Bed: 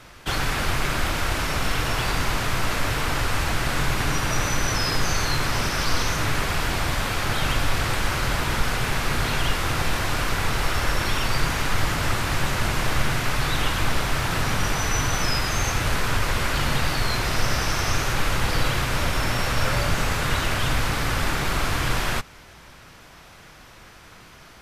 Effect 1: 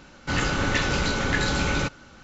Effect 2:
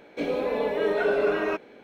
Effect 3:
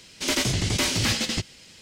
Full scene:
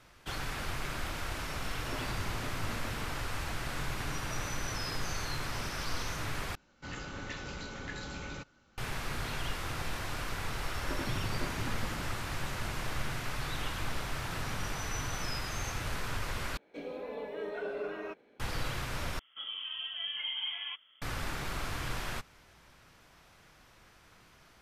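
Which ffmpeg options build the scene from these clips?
ffmpeg -i bed.wav -i cue0.wav -i cue1.wav -i cue2.wav -filter_complex "[3:a]asplit=2[link_01][link_02];[2:a]asplit=2[link_03][link_04];[0:a]volume=-13dB[link_05];[link_01]lowpass=1300[link_06];[link_02]lowpass=1200[link_07];[link_04]lowpass=frequency=3100:width_type=q:width=0.5098,lowpass=frequency=3100:width_type=q:width=0.6013,lowpass=frequency=3100:width_type=q:width=0.9,lowpass=frequency=3100:width_type=q:width=2.563,afreqshift=-3600[link_08];[link_05]asplit=4[link_09][link_10][link_11][link_12];[link_09]atrim=end=6.554[link_13];[1:a]atrim=end=2.23,asetpts=PTS-STARTPTS,volume=-17.5dB[link_14];[link_10]atrim=start=8.776:end=16.574[link_15];[link_03]atrim=end=1.83,asetpts=PTS-STARTPTS,volume=-14dB[link_16];[link_11]atrim=start=18.396:end=19.194[link_17];[link_08]atrim=end=1.83,asetpts=PTS-STARTPTS,volume=-13.5dB[link_18];[link_12]atrim=start=21.016[link_19];[link_06]atrim=end=1.81,asetpts=PTS-STARTPTS,volume=-15.5dB,afade=type=in:duration=0.004:curve=hsin,afade=type=out:start_time=1.806:duration=0.004:curve=hsin,adelay=1640[link_20];[link_07]atrim=end=1.81,asetpts=PTS-STARTPTS,volume=-12dB,afade=type=in:duration=0.004:curve=hsin,afade=type=out:start_time=1.806:duration=0.004:curve=hsin,adelay=10620[link_21];[link_13][link_14]acrossfade=duration=0.004:curve1=hsin:curve2=hsin[link_22];[link_22][link_15]acrossfade=duration=0.004:curve1=hsin:curve2=hsin[link_23];[link_23][link_16]acrossfade=duration=0.004:curve1=hsin:curve2=hsin[link_24];[link_24][link_17]acrossfade=duration=0.004:curve1=hsin:curve2=hsin[link_25];[link_25][link_18]acrossfade=duration=0.004:curve1=hsin:curve2=hsin[link_26];[link_26][link_19]acrossfade=duration=0.004:curve1=hsin:curve2=hsin[link_27];[link_27][link_20][link_21]amix=inputs=3:normalize=0" out.wav

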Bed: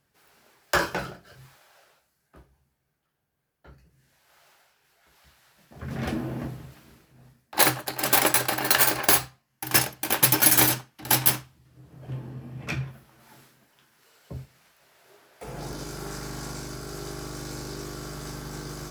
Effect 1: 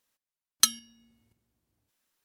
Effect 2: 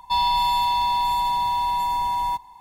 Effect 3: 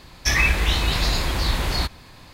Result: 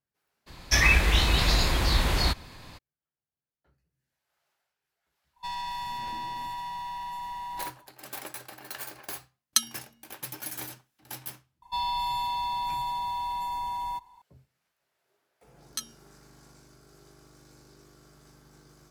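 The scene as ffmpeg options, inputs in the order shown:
ffmpeg -i bed.wav -i cue0.wav -i cue1.wav -i cue2.wav -filter_complex "[2:a]asplit=2[link_01][link_02];[1:a]asplit=2[link_03][link_04];[0:a]volume=-19.5dB[link_05];[link_01]aeval=exprs='clip(val(0),-1,0.0668)':channel_layout=same[link_06];[link_04]asplit=2[link_07][link_08];[link_08]adelay=13,volume=-3.5dB[link_09];[link_07][link_09]amix=inputs=2:normalize=0[link_10];[3:a]atrim=end=2.33,asetpts=PTS-STARTPTS,volume=-1.5dB,afade=type=in:duration=0.02,afade=type=out:start_time=2.31:duration=0.02,adelay=460[link_11];[link_06]atrim=end=2.6,asetpts=PTS-STARTPTS,volume=-12.5dB,afade=type=in:duration=0.1,afade=type=out:start_time=2.5:duration=0.1,adelay=235053S[link_12];[link_03]atrim=end=2.24,asetpts=PTS-STARTPTS,volume=-2dB,afade=type=in:duration=0.004:curve=hsin,afade=type=out:start_time=2.236:duration=0.004:curve=hsin,adelay=8930[link_13];[link_02]atrim=end=2.6,asetpts=PTS-STARTPTS,volume=-9dB,afade=type=in:duration=0.004:curve=hsin,afade=type=out:start_time=2.596:duration=0.004:curve=hsin,adelay=512442S[link_14];[link_10]atrim=end=2.24,asetpts=PTS-STARTPTS,volume=-15dB,afade=type=in:duration=0.004:curve=hsin,afade=type=out:start_time=2.236:duration=0.004:curve=hsin,adelay=15140[link_15];[link_05][link_11][link_12][link_13][link_14][link_15]amix=inputs=6:normalize=0" out.wav

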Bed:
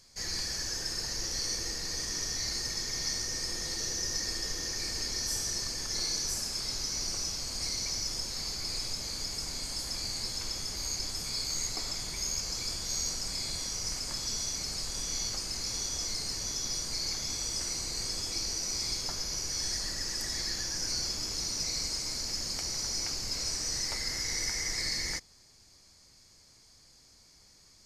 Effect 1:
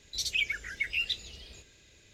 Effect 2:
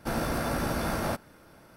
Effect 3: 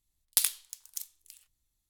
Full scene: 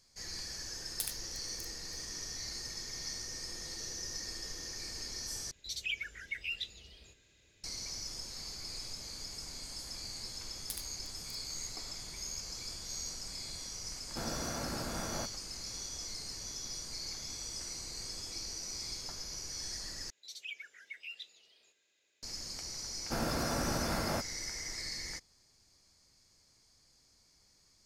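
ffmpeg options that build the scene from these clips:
ffmpeg -i bed.wav -i cue0.wav -i cue1.wav -i cue2.wav -filter_complex "[3:a]asplit=2[link_01][link_02];[1:a]asplit=2[link_03][link_04];[2:a]asplit=2[link_05][link_06];[0:a]volume=-8dB[link_07];[link_04]highpass=450[link_08];[link_07]asplit=3[link_09][link_10][link_11];[link_09]atrim=end=5.514[link_12];[link_03]atrim=end=2.13,asetpts=PTS-STARTPTS,volume=-7.5dB[link_13];[link_10]atrim=start=7.636:end=20.104[link_14];[link_08]atrim=end=2.13,asetpts=PTS-STARTPTS,volume=-15dB[link_15];[link_11]atrim=start=22.226[link_16];[link_01]atrim=end=1.89,asetpts=PTS-STARTPTS,volume=-12.5dB,afade=type=in:duration=0.004:curve=hsin,afade=type=out:start_time=1.886:duration=0.004:curve=hsin,adelay=630[link_17];[link_02]atrim=end=1.89,asetpts=PTS-STARTPTS,volume=-17dB,afade=type=in:duration=0.004:curve=hsin,afade=type=out:start_time=1.886:duration=0.004:curve=hsin,adelay=10330[link_18];[link_05]atrim=end=1.76,asetpts=PTS-STARTPTS,volume=-10dB,afade=type=in:duration=0.004:curve=hsin,afade=type=out:start_time=1.756:duration=0.004:curve=hsin,adelay=14100[link_19];[link_06]atrim=end=1.76,asetpts=PTS-STARTPTS,volume=-5dB,afade=type=in:duration=0.004:curve=hsin,afade=type=out:start_time=1.756:duration=0.004:curve=hsin,adelay=23050[link_20];[link_12][link_13]acrossfade=duration=0.004:curve1=hsin:curve2=hsin[link_21];[link_21][link_14]acrossfade=duration=0.004:curve1=hsin:curve2=hsin[link_22];[link_22][link_15]acrossfade=duration=0.004:curve1=hsin:curve2=hsin[link_23];[link_23][link_16]acrossfade=duration=0.004:curve1=hsin:curve2=hsin[link_24];[link_24][link_17][link_18][link_19][link_20]amix=inputs=5:normalize=0" out.wav

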